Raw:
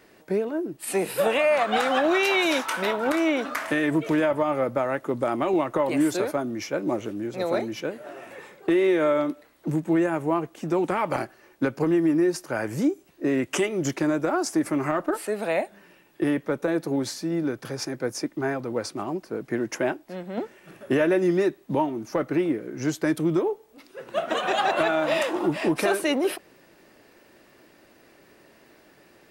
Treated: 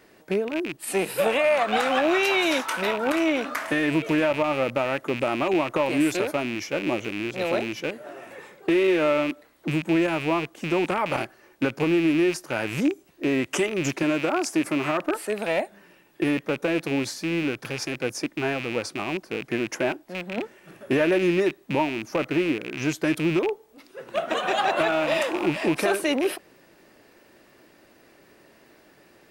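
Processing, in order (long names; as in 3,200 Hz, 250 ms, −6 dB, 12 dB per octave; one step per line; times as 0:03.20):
loose part that buzzes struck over −37 dBFS, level −21 dBFS
0:14.03–0:15.03: high-pass filter 130 Hz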